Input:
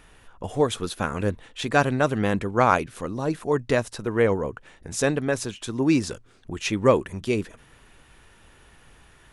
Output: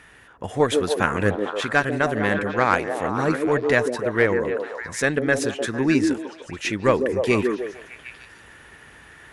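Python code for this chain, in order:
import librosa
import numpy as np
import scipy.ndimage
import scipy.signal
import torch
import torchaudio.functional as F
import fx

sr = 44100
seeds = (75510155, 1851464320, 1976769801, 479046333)

y = scipy.signal.sosfilt(scipy.signal.butter(2, 62.0, 'highpass', fs=sr, output='sos'), x)
y = fx.peak_eq(y, sr, hz=1800.0, db=9.5, octaves=0.68)
y = fx.cheby_harmonics(y, sr, harmonics=(6,), levels_db=(-27,), full_scale_db=0.5)
y = fx.rider(y, sr, range_db=4, speed_s=0.5)
y = fx.echo_stepped(y, sr, ms=151, hz=350.0, octaves=0.7, feedback_pct=70, wet_db=-1.0)
y = fx.end_taper(y, sr, db_per_s=310.0)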